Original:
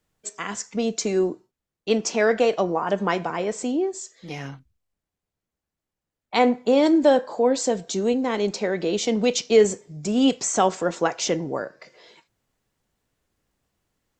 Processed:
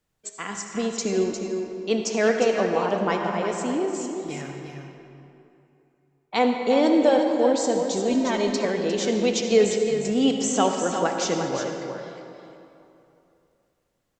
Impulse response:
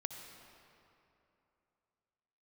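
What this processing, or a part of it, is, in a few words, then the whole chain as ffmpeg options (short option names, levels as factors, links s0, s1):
cave: -filter_complex "[0:a]aecho=1:1:355:0.398[s0];[1:a]atrim=start_sample=2205[s1];[s0][s1]afir=irnorm=-1:irlink=0,asettb=1/sr,asplit=3[s2][s3][s4];[s2]atrim=end=8.104[s5];[s3]atrim=start=8.1:end=8.65,asetpts=PTS-STARTPTS,afade=t=in:d=0.004:c=qsin,afade=t=out:st=0.546:d=0.004:c=qsin,aecho=1:1:3.2:0.98,atrim=end_sample=24255[s6];[s4]atrim=start=8.646[s7];[s5][s6]acrossfade=d=0.004:c1=hsin:c2=qsin[s8];[s8][s7]acrossfade=d=0.004:c1=qsin:c2=hsin"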